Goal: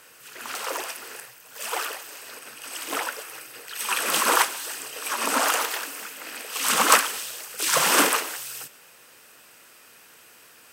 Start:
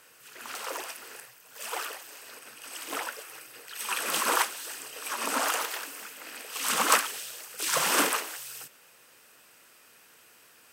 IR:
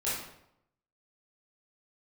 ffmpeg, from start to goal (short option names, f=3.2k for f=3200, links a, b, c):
-filter_complex "[0:a]asplit=2[a][b];[1:a]atrim=start_sample=2205,adelay=76[c];[b][c]afir=irnorm=-1:irlink=0,volume=-27dB[d];[a][d]amix=inputs=2:normalize=0,volume=5.5dB"